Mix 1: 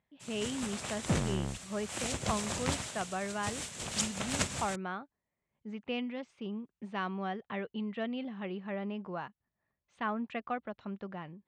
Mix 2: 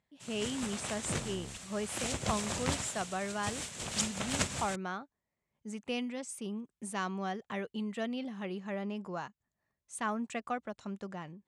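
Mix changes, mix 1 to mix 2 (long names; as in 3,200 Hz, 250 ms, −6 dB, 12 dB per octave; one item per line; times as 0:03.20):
speech: remove low-pass filter 3,600 Hz 24 dB per octave
second sound −9.5 dB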